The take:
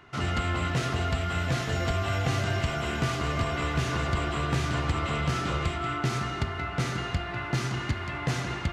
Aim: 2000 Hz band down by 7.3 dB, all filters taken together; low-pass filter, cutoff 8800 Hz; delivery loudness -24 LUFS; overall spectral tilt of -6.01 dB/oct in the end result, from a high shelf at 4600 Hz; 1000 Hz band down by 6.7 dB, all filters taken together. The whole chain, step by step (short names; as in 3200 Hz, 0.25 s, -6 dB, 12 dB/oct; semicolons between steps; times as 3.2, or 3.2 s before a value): LPF 8800 Hz; bell 1000 Hz -7 dB; bell 2000 Hz -5.5 dB; high shelf 4600 Hz -8 dB; gain +7 dB